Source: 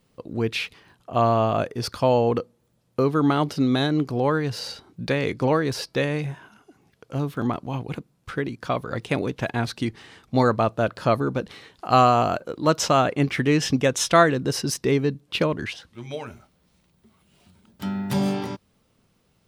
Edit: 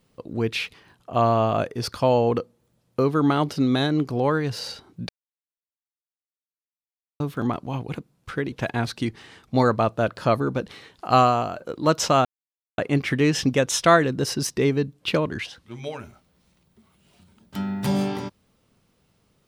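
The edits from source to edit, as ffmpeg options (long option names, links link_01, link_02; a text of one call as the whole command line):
ffmpeg -i in.wav -filter_complex "[0:a]asplit=6[link_01][link_02][link_03][link_04][link_05][link_06];[link_01]atrim=end=5.09,asetpts=PTS-STARTPTS,afade=type=out:start_time=5.086:duration=0.004:curve=hsin[link_07];[link_02]atrim=start=5.09:end=7.2,asetpts=PTS-STARTPTS,volume=0[link_08];[link_03]atrim=start=7.2:end=8.522,asetpts=PTS-STARTPTS,afade=type=in:duration=0.004:curve=hsin[link_09];[link_04]atrim=start=9.318:end=12.37,asetpts=PTS-STARTPTS,afade=type=out:start_time=2.652:duration=0.4:silence=0.334965[link_10];[link_05]atrim=start=12.37:end=13.05,asetpts=PTS-STARTPTS,afade=type=in:duration=0.004:curve=hsin:silence=0.334965,afade=type=out:start_time=0.676:duration=0.004:curve=hsin,apad=pad_dur=0.53[link_11];[link_06]atrim=start=13.05,asetpts=PTS-STARTPTS,afade=type=in:duration=0.004:curve=hsin[link_12];[link_07][link_08][link_09]concat=n=3:v=0:a=1[link_13];[link_10][link_11][link_12]concat=n=3:v=0:a=1[link_14];[link_13][link_14]acrossfade=duration=0.004:curve1=hsin:curve2=hsin" out.wav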